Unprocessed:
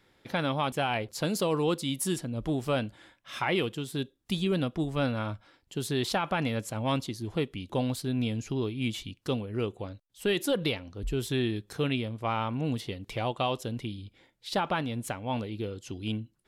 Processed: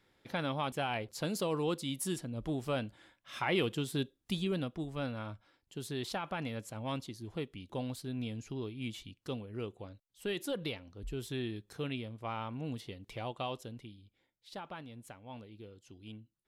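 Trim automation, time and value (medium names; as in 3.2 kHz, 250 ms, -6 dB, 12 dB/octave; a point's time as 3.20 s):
3.32 s -6 dB
3.79 s 0 dB
4.84 s -9 dB
13.55 s -9 dB
14.00 s -16 dB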